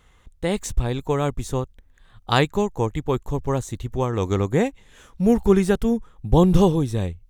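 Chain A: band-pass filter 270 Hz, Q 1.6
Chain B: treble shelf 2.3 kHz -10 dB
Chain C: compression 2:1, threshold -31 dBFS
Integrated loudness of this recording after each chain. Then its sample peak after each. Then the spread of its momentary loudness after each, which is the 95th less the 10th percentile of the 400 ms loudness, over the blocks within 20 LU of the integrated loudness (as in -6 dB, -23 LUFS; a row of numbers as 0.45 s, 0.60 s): -27.0 LUFS, -22.5 LUFS, -31.0 LUFS; -9.5 dBFS, -4.5 dBFS, -12.0 dBFS; 12 LU, 10 LU, 7 LU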